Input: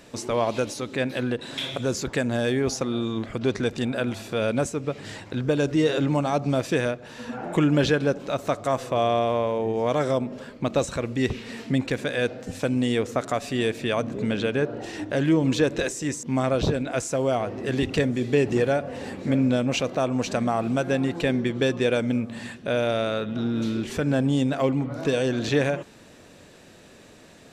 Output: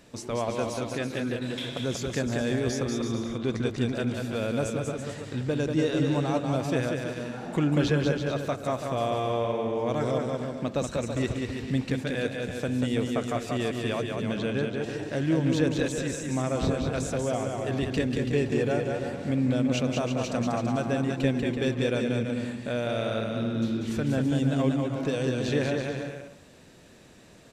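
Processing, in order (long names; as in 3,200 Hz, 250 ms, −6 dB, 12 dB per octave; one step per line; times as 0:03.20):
bass and treble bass +4 dB, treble +1 dB
on a send: bouncing-ball delay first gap 190 ms, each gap 0.75×, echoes 5
on the sum: level −6.5 dB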